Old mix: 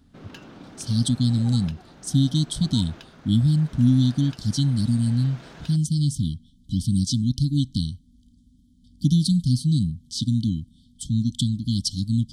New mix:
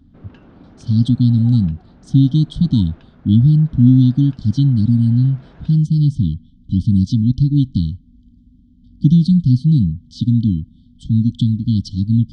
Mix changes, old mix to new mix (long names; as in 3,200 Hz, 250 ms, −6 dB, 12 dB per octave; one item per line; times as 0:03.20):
speech +8.5 dB
master: add head-to-tape spacing loss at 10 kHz 33 dB